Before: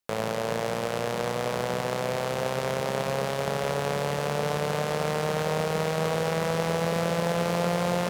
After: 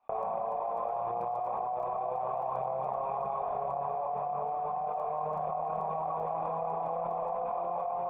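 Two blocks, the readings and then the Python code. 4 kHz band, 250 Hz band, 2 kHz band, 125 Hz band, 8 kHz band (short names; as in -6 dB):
under -35 dB, -19.0 dB, under -25 dB, -18.5 dB, under -40 dB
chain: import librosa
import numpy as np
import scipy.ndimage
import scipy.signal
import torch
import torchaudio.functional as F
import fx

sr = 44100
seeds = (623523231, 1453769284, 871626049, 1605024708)

y = fx.high_shelf(x, sr, hz=2800.0, db=9.5)
y = fx.tube_stage(y, sr, drive_db=16.0, bias=0.65)
y = fx.chorus_voices(y, sr, voices=4, hz=0.32, base_ms=28, depth_ms=3.9, mix_pct=65)
y = fx.formant_cascade(y, sr, vowel='a')
y = fx.dmg_crackle(y, sr, seeds[0], per_s=10.0, level_db=-67.0)
y = fx.env_flatten(y, sr, amount_pct=100)
y = F.gain(torch.from_numpy(y), 5.5).numpy()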